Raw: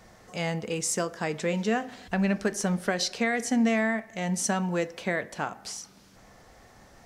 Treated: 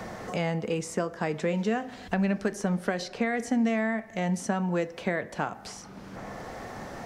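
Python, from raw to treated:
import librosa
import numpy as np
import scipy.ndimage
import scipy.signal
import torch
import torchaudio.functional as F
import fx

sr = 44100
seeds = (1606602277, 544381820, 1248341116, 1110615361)

y = fx.high_shelf(x, sr, hz=2600.0, db=-8.5)
y = fx.band_squash(y, sr, depth_pct=70)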